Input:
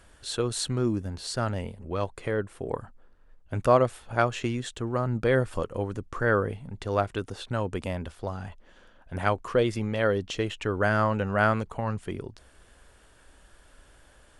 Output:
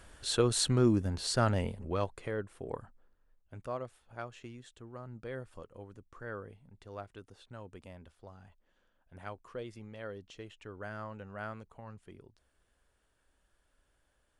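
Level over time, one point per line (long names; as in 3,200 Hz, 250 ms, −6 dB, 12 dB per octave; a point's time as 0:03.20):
0:01.75 +0.5 dB
0:02.30 −8 dB
0:02.82 −8 dB
0:03.68 −18.5 dB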